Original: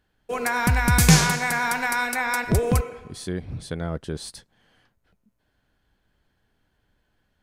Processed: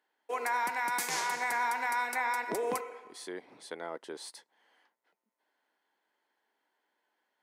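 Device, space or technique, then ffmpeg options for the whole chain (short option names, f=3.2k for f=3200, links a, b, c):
laptop speaker: -filter_complex "[0:a]highpass=f=320:w=0.5412,highpass=f=320:w=1.3066,equalizer=f=920:t=o:w=0.46:g=9.5,equalizer=f=2k:t=o:w=0.22:g=8,alimiter=limit=-14dB:level=0:latency=1:release=251,asettb=1/sr,asplit=3[a][b][c];[a]atrim=end=1.324[d];[b]atrim=start=1.32:end=2.79,asetpts=PTS-STARTPTS,afade=t=in:d=0.004:c=qsin,afade=t=out:st=1.466:d=0.004:c=qsin,lowshelf=f=250:g=8[e];[c]atrim=start=2.786[f];[d][e]acrossfade=d=0.004:c1=hsin:c2=qsin[g];[g][f]acrossfade=d=0.004:c1=qsin:c2=hsin,volume=-8dB"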